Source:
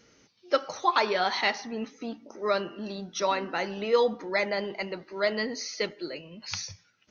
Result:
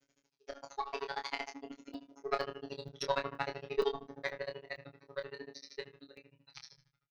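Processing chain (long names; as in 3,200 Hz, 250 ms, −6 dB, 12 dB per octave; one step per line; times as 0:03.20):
source passing by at 0:02.84, 26 m/s, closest 23 metres
convolution reverb RT60 0.30 s, pre-delay 73 ms, DRR 13 dB
harmonic generator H 4 −21 dB, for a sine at −14 dBFS
feedback echo with a low-pass in the loop 91 ms, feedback 60%, low-pass 1,600 Hz, level −18.5 dB
phases set to zero 139 Hz
granular cloud 57 ms, grains 13 per second, spray 11 ms, pitch spread up and down by 0 semitones
double-tracking delay 25 ms −7 dB
regular buffer underruns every 0.47 s, samples 128, zero, from 0:00.53
level +1 dB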